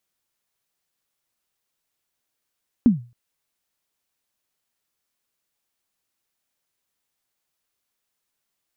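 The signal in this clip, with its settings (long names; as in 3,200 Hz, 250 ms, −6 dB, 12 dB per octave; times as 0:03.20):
synth kick length 0.27 s, from 260 Hz, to 120 Hz, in 140 ms, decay 0.33 s, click off, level −7 dB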